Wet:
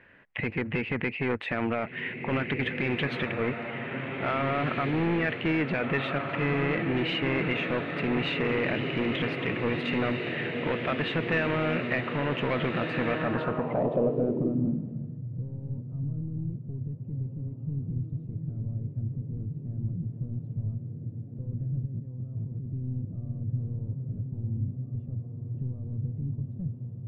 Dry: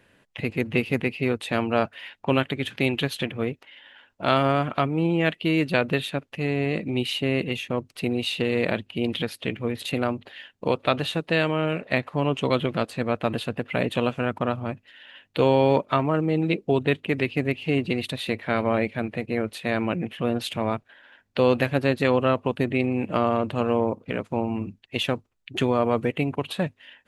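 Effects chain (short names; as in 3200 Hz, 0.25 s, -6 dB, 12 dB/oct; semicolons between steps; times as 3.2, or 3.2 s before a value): limiter -16 dBFS, peak gain reduction 11 dB; diffused feedback echo 1.826 s, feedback 63%, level -6 dB; 21.85–22.65 negative-ratio compressor -31 dBFS, ratio -1; overloaded stage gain 22.5 dB; low-pass sweep 2000 Hz -> 110 Hz, 13.14–15.24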